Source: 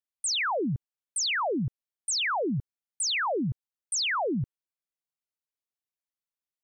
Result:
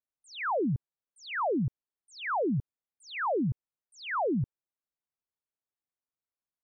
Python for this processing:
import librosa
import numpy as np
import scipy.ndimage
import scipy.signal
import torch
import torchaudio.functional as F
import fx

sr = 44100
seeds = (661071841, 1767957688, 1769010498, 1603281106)

y = scipy.signal.sosfilt(scipy.signal.butter(2, 1400.0, 'lowpass', fs=sr, output='sos'), x)